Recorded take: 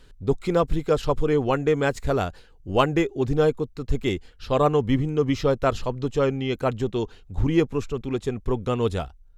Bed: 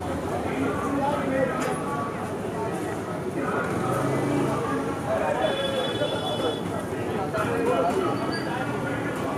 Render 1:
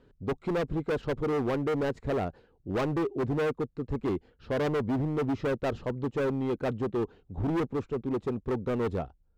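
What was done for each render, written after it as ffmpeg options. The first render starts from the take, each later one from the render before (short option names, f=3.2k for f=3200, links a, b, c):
-af "bandpass=f=310:t=q:w=0.58:csg=0,asoftclip=type=hard:threshold=-25.5dB"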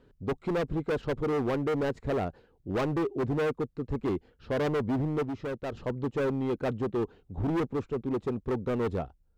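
-filter_complex "[0:a]asplit=3[a][b][c];[a]atrim=end=5.232[d];[b]atrim=start=5.228:end=5.772,asetpts=PTS-STARTPTS,volume=-5.5dB[e];[c]atrim=start=5.768[f];[d][e]acrossfade=d=0.004:c1=hsin:c2=hsin[g];[g][f]acrossfade=d=0.004:c1=hsin:c2=hsin"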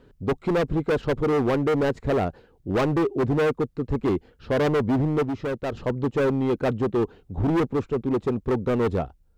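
-af "volume=6.5dB"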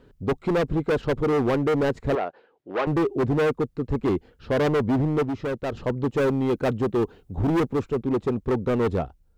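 -filter_complex "[0:a]asettb=1/sr,asplit=3[a][b][c];[a]atrim=end=2.154[d];[b]atrim=start=2.15:end=2.87,asetpts=PTS-STARTPTS,afade=t=in:d=0.004:c=qsin,afade=t=out:st=0.716:d=0.004:c=qsin,highpass=480,lowpass=3.1k[e];[c]atrim=start=2.866[f];[d][e]acrossfade=d=0.004:c1=hsin:c2=qsin[g];[g][f]acrossfade=d=0.004:c1=qsin:c2=hsin,asettb=1/sr,asplit=3[h][i][j];[h]atrim=end=6.074[k];[i]atrim=start=6.07:end=7.98,asetpts=PTS-STARTPTS,afade=t=in:d=0.004:c=qsin,afade=t=out:st=1.906:d=0.004:c=qsin,highshelf=f=6.6k:g=5.5[l];[j]atrim=start=7.976[m];[k][l]acrossfade=d=0.004:c1=hsin:c2=qsin[n];[n][m]acrossfade=d=0.004:c1=qsin:c2=hsin"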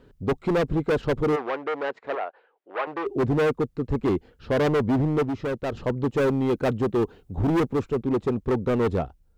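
-filter_complex "[0:a]asplit=3[a][b][c];[a]afade=t=out:st=1.35:d=0.02[d];[b]highpass=630,lowpass=2.9k,afade=t=in:st=1.35:d=0.02,afade=t=out:st=3.05:d=0.02[e];[c]afade=t=in:st=3.05:d=0.02[f];[d][e][f]amix=inputs=3:normalize=0"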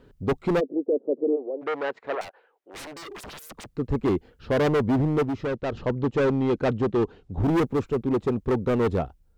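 -filter_complex "[0:a]asplit=3[a][b][c];[a]afade=t=out:st=0.59:d=0.02[d];[b]asuperpass=centerf=400:order=8:qfactor=1.1,afade=t=in:st=0.59:d=0.02,afade=t=out:st=1.61:d=0.02[e];[c]afade=t=in:st=1.61:d=0.02[f];[d][e][f]amix=inputs=3:normalize=0,asettb=1/sr,asplit=3[g][h][i];[g]atrim=end=2.214[j];[h]atrim=start=2.21:end=3.7,asetpts=PTS-STARTPTS,afade=t=in:d=0.004:c=qsin,afade=t=out:st=1.486:d=0.004:c=qsin,aeval=exprs='0.0188*(abs(mod(val(0)/0.0188+3,4)-2)-1)':c=same[k];[i]atrim=start=3.696[l];[j][k]acrossfade=d=0.004:c1=hsin:c2=qsin[m];[m][l]acrossfade=d=0.004:c1=qsin:c2=hsin,asettb=1/sr,asplit=3[n][o][p];[n]atrim=end=5.454[q];[o]atrim=start=5.45:end=7.4,asetpts=PTS-STARTPTS,afade=t=in:d=0.004:c=qsin,afade=t=out:st=1.946:d=0.004:c=qsin,lowpass=6k[r];[p]atrim=start=7.396[s];[q][r]acrossfade=d=0.004:c1=hsin:c2=qsin[t];[t][s]acrossfade=d=0.004:c1=qsin:c2=hsin"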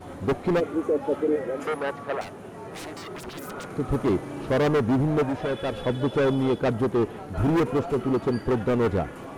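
-filter_complex "[1:a]volume=-11dB[a];[0:a][a]amix=inputs=2:normalize=0"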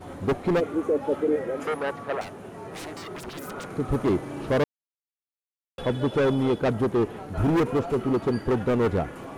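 -filter_complex "[0:a]asplit=3[a][b][c];[a]atrim=end=4.64,asetpts=PTS-STARTPTS,afade=t=out:st=4.636:d=0.004:c=hsin[d];[b]atrim=start=4.64:end=5.78,asetpts=PTS-STARTPTS,volume=0[e];[c]atrim=start=5.78,asetpts=PTS-STARTPTS,afade=t=in:d=0.004:c=hsin[f];[d][e][f]concat=n=3:v=0:a=1"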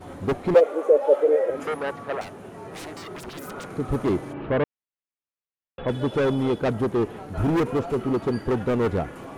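-filter_complex "[0:a]asettb=1/sr,asplit=3[a][b][c];[a]atrim=end=0.544[d];[b]atrim=start=0.54:end=1.5,asetpts=PTS-STARTPTS,afade=t=in:d=0.004:c=qsin,afade=t=out:st=0.956:d=0.004:c=qsin,highpass=f=550:t=q:w=4.3[e];[c]atrim=start=1.496[f];[d][e]acrossfade=d=0.004:c1=hsin:c2=qsin[g];[g][f]acrossfade=d=0.004:c1=qsin:c2=hsin,asplit=3[h][i][j];[h]afade=t=out:st=4.32:d=0.02[k];[i]lowpass=f=2.9k:w=0.5412,lowpass=f=2.9k:w=1.3066,afade=t=in:st=4.32:d=0.02,afade=t=out:st=5.87:d=0.02[l];[j]afade=t=in:st=5.87:d=0.02[m];[k][l][m]amix=inputs=3:normalize=0"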